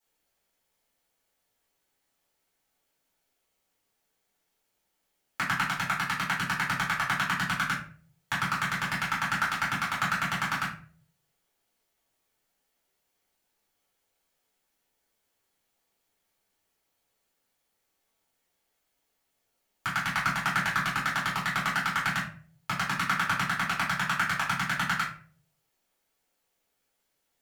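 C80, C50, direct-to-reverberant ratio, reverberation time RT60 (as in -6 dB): 11.0 dB, 6.0 dB, -9.0 dB, 0.50 s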